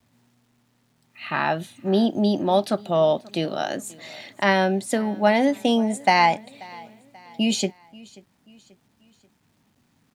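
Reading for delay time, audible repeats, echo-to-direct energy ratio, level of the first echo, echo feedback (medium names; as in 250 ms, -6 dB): 535 ms, 2, -22.0 dB, -23.0 dB, 45%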